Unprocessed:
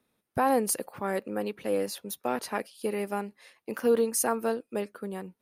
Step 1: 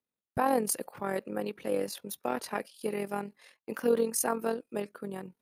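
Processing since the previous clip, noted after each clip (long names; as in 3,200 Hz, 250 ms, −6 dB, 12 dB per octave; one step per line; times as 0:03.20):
noise gate −57 dBFS, range −17 dB
amplitude modulation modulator 43 Hz, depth 40%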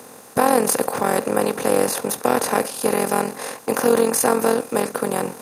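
compressor on every frequency bin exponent 0.4
high-pass filter 120 Hz 12 dB per octave
level +7 dB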